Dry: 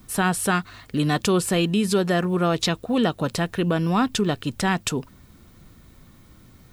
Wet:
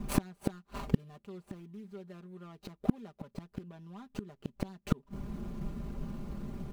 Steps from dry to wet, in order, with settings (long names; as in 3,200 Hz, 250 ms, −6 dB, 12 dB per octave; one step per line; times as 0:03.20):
running median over 25 samples
comb filter 5 ms, depth 84%
gate with flip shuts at −20 dBFS, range −39 dB
level +9 dB